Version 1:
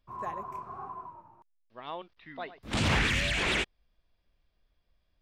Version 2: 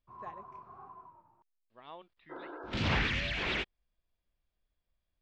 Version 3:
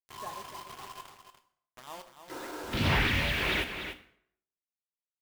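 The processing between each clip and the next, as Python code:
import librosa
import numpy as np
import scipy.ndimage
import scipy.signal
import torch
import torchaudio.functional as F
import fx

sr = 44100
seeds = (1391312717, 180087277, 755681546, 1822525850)

y1 = fx.spec_repair(x, sr, seeds[0], start_s=2.33, length_s=0.44, low_hz=280.0, high_hz=1700.0, source='after')
y1 = scipy.signal.sosfilt(scipy.signal.butter(4, 5100.0, 'lowpass', fs=sr, output='sos'), y1)
y1 = fx.upward_expand(y1, sr, threshold_db=-38.0, expansion=1.5)
y1 = y1 * librosa.db_to_amplitude(-3.0)
y2 = fx.quant_dither(y1, sr, seeds[1], bits=8, dither='none')
y2 = y2 + 10.0 ** (-9.0 / 20.0) * np.pad(y2, (int(292 * sr / 1000.0), 0))[:len(y2)]
y2 = fx.rev_plate(y2, sr, seeds[2], rt60_s=0.63, hf_ratio=0.8, predelay_ms=0, drr_db=7.5)
y2 = y2 * librosa.db_to_amplitude(3.0)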